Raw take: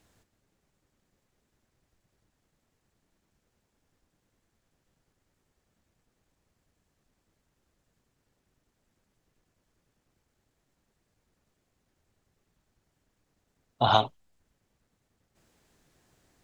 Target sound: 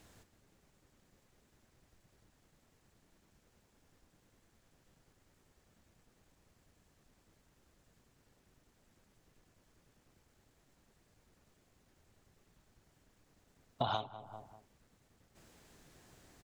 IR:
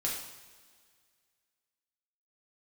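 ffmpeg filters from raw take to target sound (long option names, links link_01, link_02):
-filter_complex "[0:a]asplit=2[link_01][link_02];[link_02]adelay=196,lowpass=frequency=1100:poles=1,volume=-20.5dB,asplit=2[link_03][link_04];[link_04]adelay=196,lowpass=frequency=1100:poles=1,volume=0.37,asplit=2[link_05][link_06];[link_06]adelay=196,lowpass=frequency=1100:poles=1,volume=0.37[link_07];[link_03][link_05][link_07]amix=inputs=3:normalize=0[link_08];[link_01][link_08]amix=inputs=2:normalize=0,acompressor=threshold=-38dB:ratio=8,volume=5dB"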